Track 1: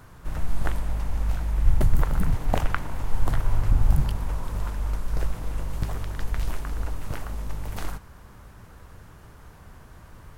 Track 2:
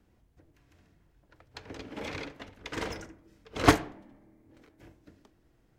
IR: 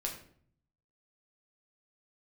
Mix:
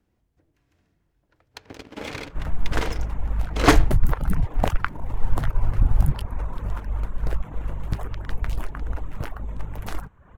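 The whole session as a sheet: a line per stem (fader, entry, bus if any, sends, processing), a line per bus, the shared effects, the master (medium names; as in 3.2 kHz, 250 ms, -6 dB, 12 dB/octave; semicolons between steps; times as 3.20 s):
+2.5 dB, 2.10 s, no send, local Wiener filter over 9 samples; reverb removal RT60 0.7 s
-1.0 dB, 0.00 s, no send, waveshaping leveller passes 2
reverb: none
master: none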